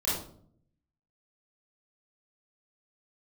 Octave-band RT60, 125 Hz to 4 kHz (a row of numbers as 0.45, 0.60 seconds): 1.0, 0.90, 0.65, 0.50, 0.35, 0.35 seconds